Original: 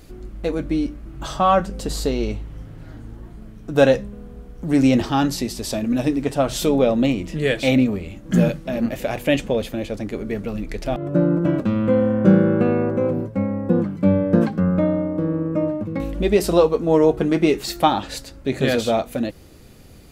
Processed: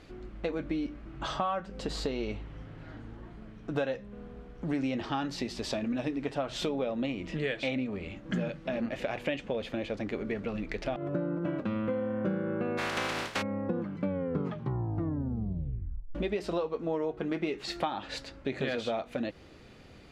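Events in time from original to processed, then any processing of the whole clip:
0:12.77–0:13.41: compressing power law on the bin magnitudes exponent 0.23
0:14.07: tape stop 2.08 s
whole clip: low-pass filter 2,900 Hz 12 dB per octave; spectral tilt +2 dB per octave; downward compressor, threshold −27 dBFS; level −2 dB

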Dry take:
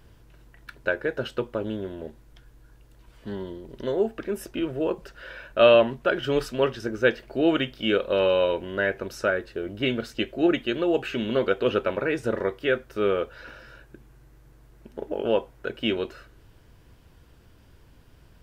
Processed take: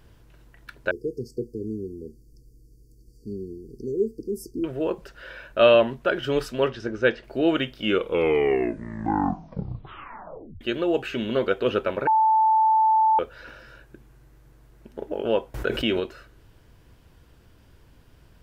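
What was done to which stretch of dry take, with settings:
0:00.91–0:04.64: linear-phase brick-wall band-stop 490–4,400 Hz
0:06.68–0:07.24: low-pass filter 5,500 Hz
0:07.80: tape stop 2.81 s
0:12.07–0:13.19: beep over 879 Hz −15.5 dBFS
0:15.54–0:16.00: envelope flattener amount 70%

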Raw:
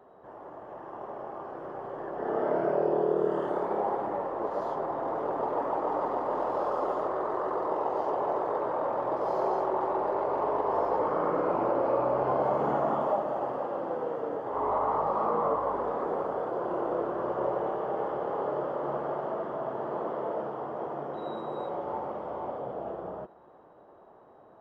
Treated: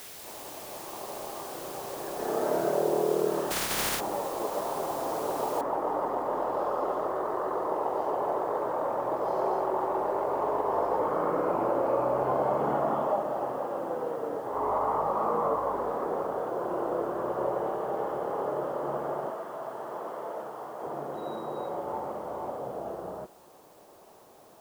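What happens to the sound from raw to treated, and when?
0:03.50–0:03.99: compressing power law on the bin magnitudes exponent 0.15
0:05.61: noise floor change −45 dB −63 dB
0:19.30–0:20.84: low-shelf EQ 490 Hz −10.5 dB

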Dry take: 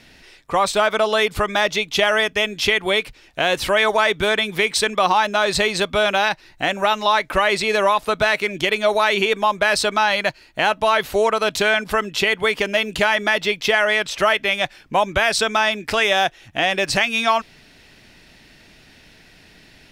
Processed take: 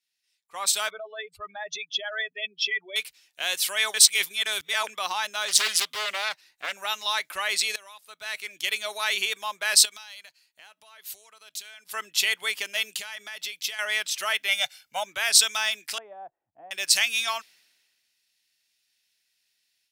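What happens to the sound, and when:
0:00.90–0:02.96: expanding power law on the bin magnitudes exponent 2.7
0:03.94–0:04.87: reverse
0:05.48–0:06.73: highs frequency-modulated by the lows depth 0.77 ms
0:07.76–0:08.72: fade in, from −18.5 dB
0:09.85–0:11.92: downward compressor 4 to 1, threshold −29 dBFS
0:12.83–0:13.79: downward compressor, threshold −20 dBFS
0:14.48–0:15.04: comb filter 1.4 ms, depth 78%
0:15.98–0:16.71: Chebyshev low-pass filter 800 Hz, order 3
whole clip: first difference; automatic gain control gain up to 5 dB; multiband upward and downward expander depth 70%; level −2 dB

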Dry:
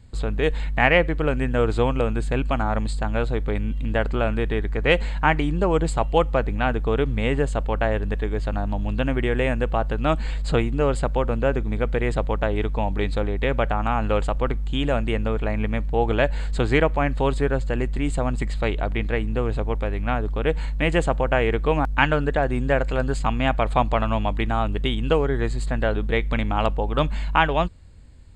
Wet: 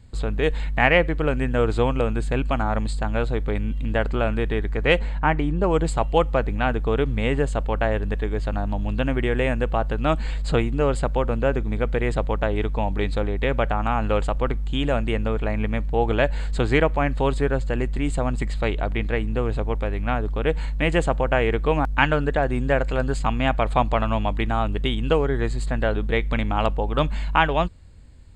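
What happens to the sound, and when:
0:04.99–0:05.64: high-shelf EQ 2,400 Hz −10 dB

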